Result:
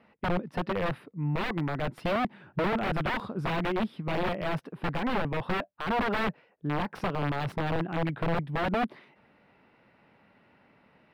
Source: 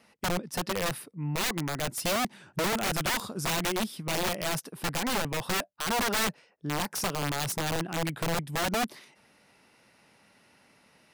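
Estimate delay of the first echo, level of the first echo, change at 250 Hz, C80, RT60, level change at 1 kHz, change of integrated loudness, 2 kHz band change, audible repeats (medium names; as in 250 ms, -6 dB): no echo, no echo, +2.5 dB, no reverb, no reverb, +1.0 dB, -1.0 dB, -1.5 dB, no echo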